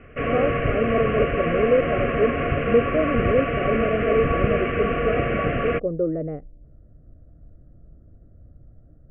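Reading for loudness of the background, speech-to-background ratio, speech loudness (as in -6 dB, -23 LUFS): -24.0 LUFS, -1.0 dB, -25.0 LUFS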